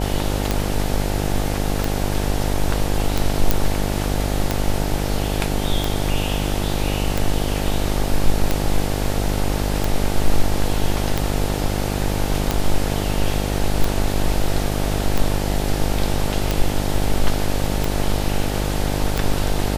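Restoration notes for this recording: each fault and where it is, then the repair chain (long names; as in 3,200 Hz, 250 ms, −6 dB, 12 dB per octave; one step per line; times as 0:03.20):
mains buzz 50 Hz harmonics 18 −23 dBFS
scratch tick 45 rpm
0:03.51: click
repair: click removal
hum removal 50 Hz, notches 18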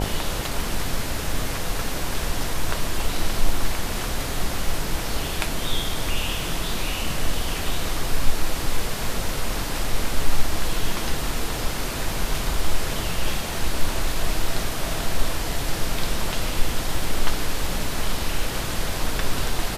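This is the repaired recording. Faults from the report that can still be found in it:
none of them is left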